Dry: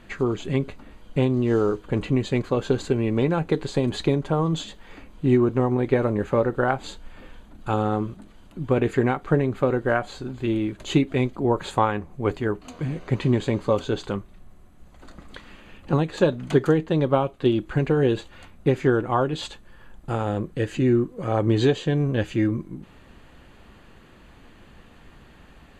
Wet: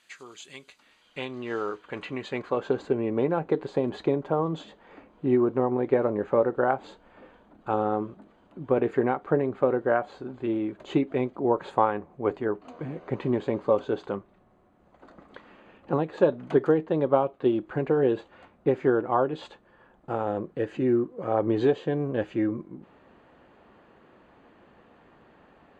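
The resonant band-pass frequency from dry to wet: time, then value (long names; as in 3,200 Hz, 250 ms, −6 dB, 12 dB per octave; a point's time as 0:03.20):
resonant band-pass, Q 0.71
0:00.64 7,400 Hz
0:01.42 1,800 Hz
0:02.04 1,800 Hz
0:02.88 620 Hz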